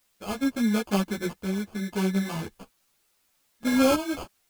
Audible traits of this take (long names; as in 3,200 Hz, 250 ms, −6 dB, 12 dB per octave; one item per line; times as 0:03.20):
aliases and images of a low sample rate 1,900 Hz, jitter 0%
tremolo saw up 0.76 Hz, depth 70%
a quantiser's noise floor 12 bits, dither triangular
a shimmering, thickened sound